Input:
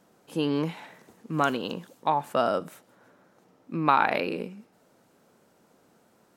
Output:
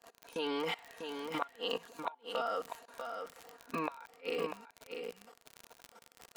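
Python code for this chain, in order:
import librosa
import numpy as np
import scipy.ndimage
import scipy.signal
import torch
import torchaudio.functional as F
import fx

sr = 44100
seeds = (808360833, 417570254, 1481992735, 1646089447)

y = fx.spec_ripple(x, sr, per_octave=1.5, drift_hz=-1.1, depth_db=8)
y = scipy.signal.sosfilt(scipy.signal.butter(2, 590.0, 'highpass', fs=sr, output='sos'), y)
y = fx.high_shelf(y, sr, hz=7700.0, db=-10.0)
y = y + 0.92 * np.pad(y, (int(4.3 * sr / 1000.0), 0))[:len(y)]
y = fx.level_steps(y, sr, step_db=21)
y = fx.dmg_crackle(y, sr, seeds[0], per_s=35.0, level_db=-41.0)
y = fx.gate_flip(y, sr, shuts_db=-27.0, range_db=-37)
y = y + 10.0 ** (-6.5 / 20.0) * np.pad(y, (int(645 * sr / 1000.0), 0))[:len(y)]
y = y * librosa.db_to_amplitude(7.0)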